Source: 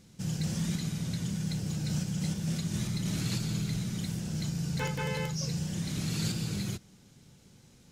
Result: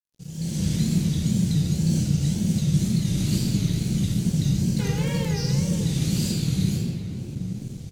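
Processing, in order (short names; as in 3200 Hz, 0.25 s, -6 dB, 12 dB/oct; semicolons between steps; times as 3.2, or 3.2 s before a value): in parallel at -2 dB: compressor, threshold -44 dBFS, peak gain reduction 16 dB; on the sum: shoebox room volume 130 m³, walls hard, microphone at 0.73 m; wow and flutter 140 cents; notch 5300 Hz, Q 18; on a send: echo 87 ms -17 dB; on the sum: AGC gain up to 14 dB; crossover distortion -38.5 dBFS; bell 1200 Hz -12.5 dB 2.3 oct; gain -7.5 dB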